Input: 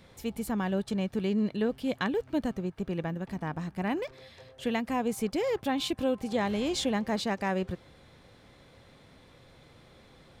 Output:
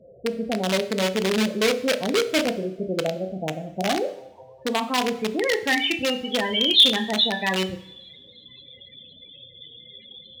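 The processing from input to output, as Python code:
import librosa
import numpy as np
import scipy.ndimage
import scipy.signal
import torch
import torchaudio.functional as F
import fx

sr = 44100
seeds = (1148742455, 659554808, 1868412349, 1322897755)

p1 = fx.room_flutter(x, sr, wall_m=5.5, rt60_s=0.34)
p2 = fx.filter_sweep_lowpass(p1, sr, from_hz=610.0, to_hz=3300.0, start_s=3.71, end_s=6.45, q=3.6)
p3 = fx.spec_topn(p2, sr, count=16)
p4 = (np.mod(10.0 ** (19.5 / 20.0) * p3 + 1.0, 2.0) - 1.0) / 10.0 ** (19.5 / 20.0)
p5 = p3 + (p4 * 10.0 ** (-6.0 / 20.0))
p6 = fx.weighting(p5, sr, curve='D')
y = fx.rev_double_slope(p6, sr, seeds[0], early_s=0.79, late_s=2.5, knee_db=-26, drr_db=12.5)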